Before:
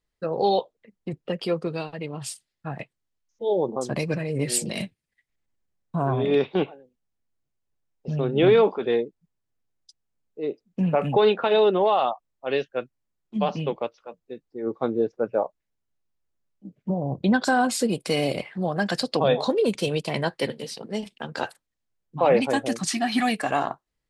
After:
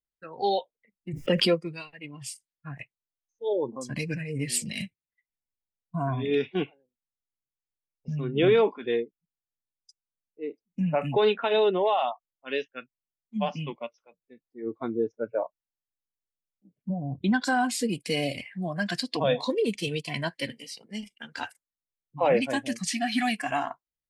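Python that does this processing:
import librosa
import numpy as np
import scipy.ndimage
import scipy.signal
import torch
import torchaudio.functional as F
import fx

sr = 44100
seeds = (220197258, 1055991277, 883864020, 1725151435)

y = fx.env_flatten(x, sr, amount_pct=70, at=(1.13, 1.54), fade=0.02)
y = fx.notch(y, sr, hz=1200.0, q=11.0)
y = fx.noise_reduce_blind(y, sr, reduce_db=14)
y = fx.dynamic_eq(y, sr, hz=2500.0, q=1.3, threshold_db=-43.0, ratio=4.0, max_db=3)
y = F.gain(torch.from_numpy(y), -3.5).numpy()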